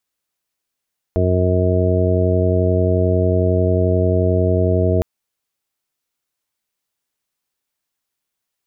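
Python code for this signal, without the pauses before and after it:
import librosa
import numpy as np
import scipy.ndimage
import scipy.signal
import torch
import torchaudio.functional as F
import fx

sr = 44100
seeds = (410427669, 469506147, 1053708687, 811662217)

y = fx.additive_steady(sr, length_s=3.86, hz=91.2, level_db=-16, upper_db=(-7.0, -9.0, -5.5, -5.5, -18.0, -5.0))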